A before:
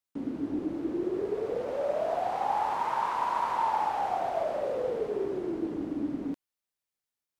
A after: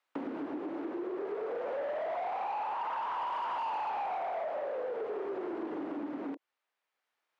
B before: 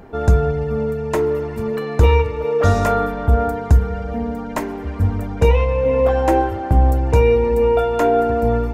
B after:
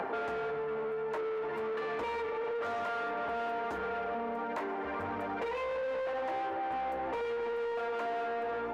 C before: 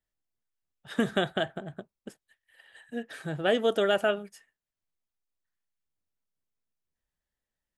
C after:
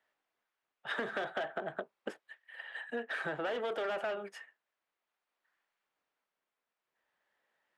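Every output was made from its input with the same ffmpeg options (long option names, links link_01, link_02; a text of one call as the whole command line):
ffmpeg -i in.wav -filter_complex "[0:a]acrossover=split=250|540|2600[link_01][link_02][link_03][link_04];[link_01]asoftclip=type=tanh:threshold=-16.5dB[link_05];[link_02]flanger=delay=17.5:depth=8:speed=1.5[link_06];[link_05][link_06][link_03][link_04]amix=inputs=4:normalize=0,tremolo=f=0.53:d=0.4,asplit=2[link_07][link_08];[link_08]highpass=frequency=720:poles=1,volume=33dB,asoftclip=type=tanh:threshold=-5.5dB[link_09];[link_07][link_09]amix=inputs=2:normalize=0,lowpass=frequency=1400:poles=1,volume=-6dB,bass=frequency=250:gain=-7,treble=frequency=4000:gain=-9,acompressor=threshold=-26dB:ratio=12,lowshelf=frequency=130:gain=-10.5,volume=-7dB" out.wav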